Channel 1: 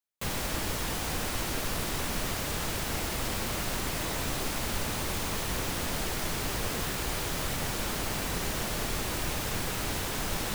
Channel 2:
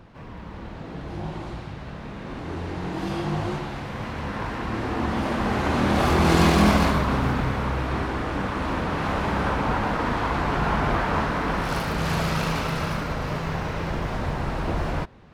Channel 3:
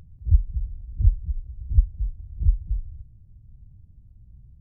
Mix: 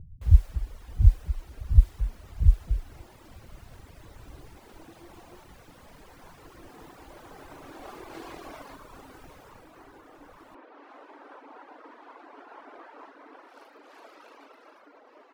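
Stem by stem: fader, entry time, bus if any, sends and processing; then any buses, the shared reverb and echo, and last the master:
9.35 s -16 dB -> 10.03 s -23 dB, 0.00 s, no send, none
-18.5 dB, 1.85 s, no send, elliptic high-pass 280 Hz, stop band 40 dB
+1.5 dB, 0.00 s, no send, level-controlled noise filter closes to 300 Hz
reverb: none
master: reverb removal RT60 1.1 s; tape noise reduction on one side only decoder only

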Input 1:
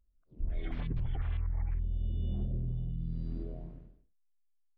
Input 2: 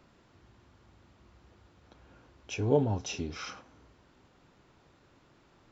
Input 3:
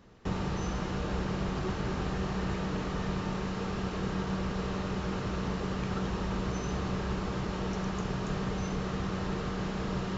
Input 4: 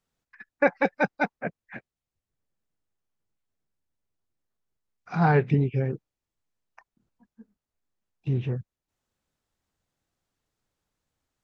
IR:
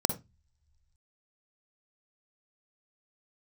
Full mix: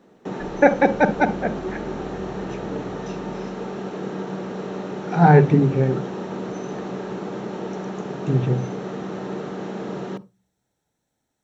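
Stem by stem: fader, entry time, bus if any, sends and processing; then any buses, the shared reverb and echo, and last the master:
-3.0 dB, 0.00 s, no send, none
-9.5 dB, 0.00 s, no send, none
+2.0 dB, 0.00 s, send -18 dB, high-pass 230 Hz 12 dB/octave; tilt shelf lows +5 dB
+1.0 dB, 0.00 s, send -8 dB, none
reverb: on, pre-delay 45 ms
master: bass shelf 100 Hz -9.5 dB

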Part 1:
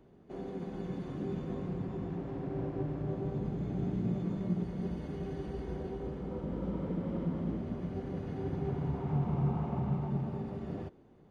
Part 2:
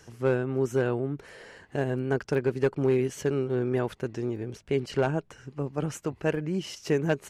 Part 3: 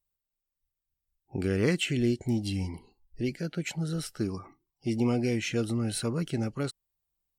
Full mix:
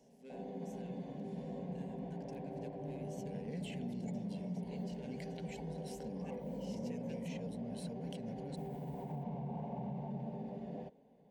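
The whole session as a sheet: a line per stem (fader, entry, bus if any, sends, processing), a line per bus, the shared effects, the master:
+2.5 dB, 0.00 s, bus A, no send, peaking EQ 94 Hz -10 dB 2.4 oct
-17.0 dB, 0.00 s, no bus, no send, peaking EQ 690 Hz -14 dB 1.2 oct; static phaser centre 310 Hz, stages 4
-12.0 dB, 1.85 s, bus A, no send, decay stretcher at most 28 dB/s
bus A: 0.0 dB, treble shelf 2.6 kHz -11.5 dB; peak limiter -31.5 dBFS, peak gain reduction 8.5 dB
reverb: none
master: high-pass 70 Hz; static phaser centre 340 Hz, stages 6

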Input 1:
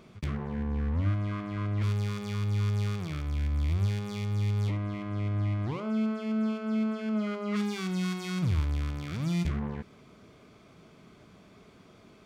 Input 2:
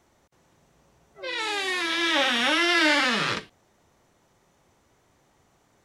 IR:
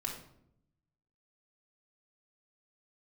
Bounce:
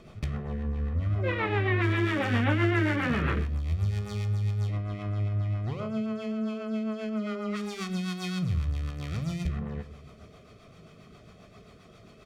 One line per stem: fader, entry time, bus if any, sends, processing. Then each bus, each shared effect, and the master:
+1.5 dB, 0.00 s, send -6.5 dB, comb 1.6 ms, depth 50%; compression 2:1, threshold -34 dBFS, peak gain reduction 7.5 dB
+1.5 dB, 0.00 s, send -9.5 dB, low-pass 2.4 kHz 24 dB/octave; bass shelf 350 Hz +11 dB; compression, threshold -27 dBFS, peak gain reduction 11.5 dB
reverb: on, RT60 0.75 s, pre-delay 3 ms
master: rotary cabinet horn 7.5 Hz

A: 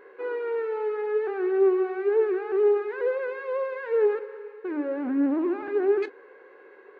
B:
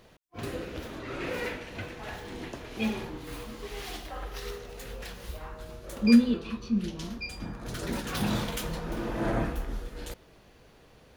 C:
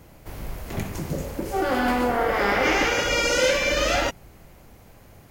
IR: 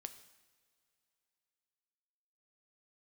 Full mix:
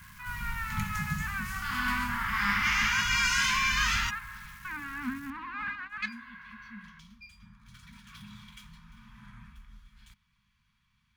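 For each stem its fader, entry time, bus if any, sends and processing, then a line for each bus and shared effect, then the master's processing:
+3.0 dB, 0.00 s, bus A, no send, peaking EQ 920 Hz -5 dB 1.7 oct; level rider gain up to 6.5 dB
-16.0 dB, 0.00 s, bus A, no send, median filter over 3 samples; compression 2:1, threshold -31 dBFS, peak gain reduction 10 dB; small resonant body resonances 640/2300/3300 Hz, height 12 dB
-3.0 dB, 0.00 s, no bus, no send, bit crusher 8-bit
bus A: 0.0 dB, compressor with a negative ratio -15 dBFS, ratio -0.5; peak limiter -14.5 dBFS, peak gain reduction 6 dB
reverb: none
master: Chebyshev band-stop 220–1000 Hz, order 4

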